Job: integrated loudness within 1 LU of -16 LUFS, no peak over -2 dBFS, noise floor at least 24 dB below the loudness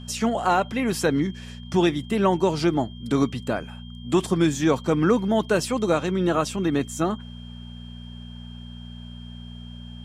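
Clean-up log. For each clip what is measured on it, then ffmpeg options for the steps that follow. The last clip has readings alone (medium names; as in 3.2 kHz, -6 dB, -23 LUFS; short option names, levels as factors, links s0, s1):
hum 60 Hz; highest harmonic 240 Hz; hum level -36 dBFS; steady tone 3.2 kHz; tone level -47 dBFS; loudness -23.5 LUFS; peak level -8.5 dBFS; loudness target -16.0 LUFS
-> -af "bandreject=f=60:t=h:w=4,bandreject=f=120:t=h:w=4,bandreject=f=180:t=h:w=4,bandreject=f=240:t=h:w=4"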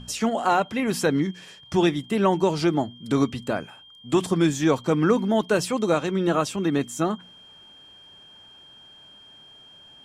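hum not found; steady tone 3.2 kHz; tone level -47 dBFS
-> -af "bandreject=f=3200:w=30"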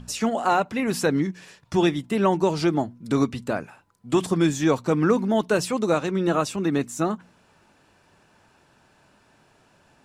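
steady tone not found; loudness -23.5 LUFS; peak level -8.0 dBFS; loudness target -16.0 LUFS
-> -af "volume=2.37,alimiter=limit=0.794:level=0:latency=1"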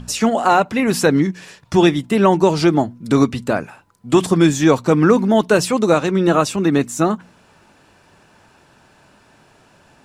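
loudness -16.0 LUFS; peak level -2.0 dBFS; noise floor -53 dBFS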